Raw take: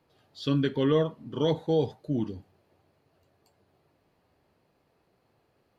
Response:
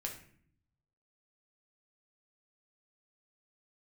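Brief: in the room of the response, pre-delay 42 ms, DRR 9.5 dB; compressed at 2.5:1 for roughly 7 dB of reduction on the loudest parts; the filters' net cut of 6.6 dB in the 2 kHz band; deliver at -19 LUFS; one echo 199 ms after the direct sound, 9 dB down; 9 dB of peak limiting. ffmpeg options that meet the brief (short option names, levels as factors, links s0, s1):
-filter_complex "[0:a]equalizer=f=2000:t=o:g=-9,acompressor=threshold=0.0282:ratio=2.5,alimiter=level_in=1.5:limit=0.0631:level=0:latency=1,volume=0.668,aecho=1:1:199:0.355,asplit=2[s0][s1];[1:a]atrim=start_sample=2205,adelay=42[s2];[s1][s2]afir=irnorm=-1:irlink=0,volume=0.355[s3];[s0][s3]amix=inputs=2:normalize=0,volume=8.91"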